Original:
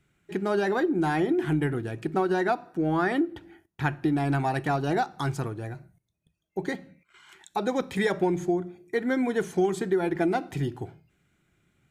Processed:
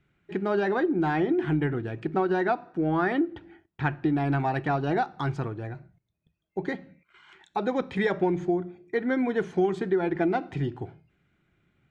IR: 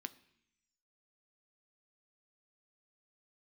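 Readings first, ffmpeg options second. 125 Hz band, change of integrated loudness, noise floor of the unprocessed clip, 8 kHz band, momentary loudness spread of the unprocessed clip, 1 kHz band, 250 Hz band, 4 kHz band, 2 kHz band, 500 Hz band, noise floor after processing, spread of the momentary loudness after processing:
0.0 dB, 0.0 dB, -76 dBFS, under -10 dB, 10 LU, 0.0 dB, 0.0 dB, -3.5 dB, -0.5 dB, 0.0 dB, -77 dBFS, 10 LU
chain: -af "lowpass=3.4k"

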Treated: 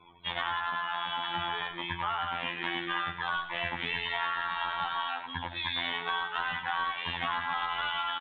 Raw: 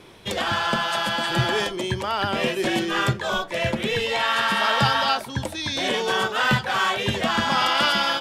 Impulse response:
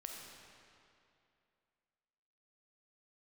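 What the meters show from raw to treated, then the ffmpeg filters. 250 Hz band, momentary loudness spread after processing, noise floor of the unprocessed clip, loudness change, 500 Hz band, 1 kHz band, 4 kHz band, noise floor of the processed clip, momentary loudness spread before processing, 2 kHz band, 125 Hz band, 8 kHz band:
-17.5 dB, 3 LU, -37 dBFS, -10.0 dB, -18.5 dB, -8.0 dB, -10.5 dB, -43 dBFS, 6 LU, -8.5 dB, -18.5 dB, under -40 dB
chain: -filter_complex "[0:a]afftfilt=real='re*gte(hypot(re,im),0.00708)':imag='im*gte(hypot(re,im),0.00708)':win_size=1024:overlap=0.75,afftfilt=real='hypot(re,im)*cos(PI*b)':imag='0':win_size=2048:overlap=0.75,lowshelf=f=700:t=q:w=3:g=-8.5,aresample=8000,aeval=exprs='clip(val(0),-1,0.188)':c=same,aresample=44100,acompressor=threshold=-28dB:ratio=6,asplit=2[a][b];[b]aecho=0:1:104|208|312|416|520:0.299|0.128|0.0552|0.0237|0.0102[c];[a][c]amix=inputs=2:normalize=0"

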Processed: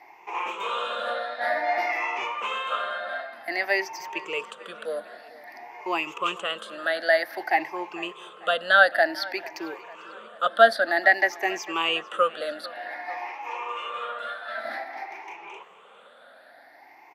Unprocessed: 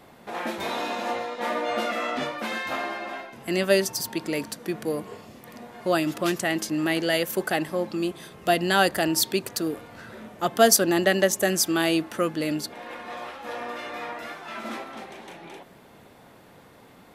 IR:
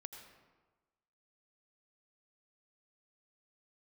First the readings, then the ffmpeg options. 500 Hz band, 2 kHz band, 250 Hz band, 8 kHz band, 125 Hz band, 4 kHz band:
-1.5 dB, +5.5 dB, -13.0 dB, -18.0 dB, under -20 dB, -2.0 dB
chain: -filter_complex "[0:a]afftfilt=real='re*pow(10,19/40*sin(2*PI*(0.74*log(max(b,1)*sr/1024/100)/log(2)-(0.53)*(pts-256)/sr)))':imag='im*pow(10,19/40*sin(2*PI*(0.74*log(max(b,1)*sr/1024/100)/log(2)-(0.53)*(pts-256)/sr)))':win_size=1024:overlap=0.75,highpass=200,acrossover=split=4600[a][b];[b]acompressor=threshold=-34dB:ratio=4:attack=1:release=60[c];[a][c]amix=inputs=2:normalize=0,acrossover=split=530 3600:gain=0.0794 1 0.178[d][e][f];[d][e][f]amix=inputs=3:normalize=0,asplit=2[g][h];[h]adelay=447,lowpass=f=4k:p=1,volume=-20dB,asplit=2[i][j];[j]adelay=447,lowpass=f=4k:p=1,volume=0.54,asplit=2[k][l];[l]adelay=447,lowpass=f=4k:p=1,volume=0.54,asplit=2[m][n];[n]adelay=447,lowpass=f=4k:p=1,volume=0.54[o];[g][i][k][m][o]amix=inputs=5:normalize=0"

